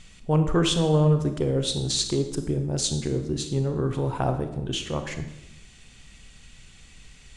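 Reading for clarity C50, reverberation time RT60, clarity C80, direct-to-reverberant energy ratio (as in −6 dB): 9.0 dB, 0.85 s, 11.0 dB, 7.0 dB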